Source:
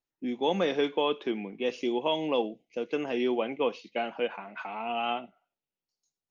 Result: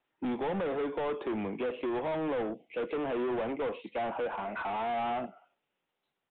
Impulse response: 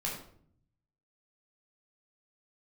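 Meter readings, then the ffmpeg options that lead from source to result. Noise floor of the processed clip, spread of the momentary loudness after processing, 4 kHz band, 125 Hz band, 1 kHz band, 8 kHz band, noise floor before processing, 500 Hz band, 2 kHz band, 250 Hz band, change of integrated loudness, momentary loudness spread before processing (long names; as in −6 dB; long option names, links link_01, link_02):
−85 dBFS, 4 LU, −13.0 dB, +0.5 dB, −1.0 dB, can't be measured, below −85 dBFS, −3.0 dB, −3.0 dB, −2.5 dB, −3.0 dB, 9 LU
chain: -filter_complex "[0:a]lowshelf=frequency=180:gain=6,acrossover=split=310|1200[link_01][link_02][link_03];[link_03]acompressor=threshold=-53dB:ratio=6[link_04];[link_01][link_02][link_04]amix=inputs=3:normalize=0,alimiter=limit=-22.5dB:level=0:latency=1:release=399,asplit=2[link_05][link_06];[link_06]highpass=frequency=720:poles=1,volume=27dB,asoftclip=type=tanh:threshold=-22.5dB[link_07];[link_05][link_07]amix=inputs=2:normalize=0,lowpass=frequency=2000:poles=1,volume=-6dB,aresample=8000,aresample=44100,volume=-3.5dB"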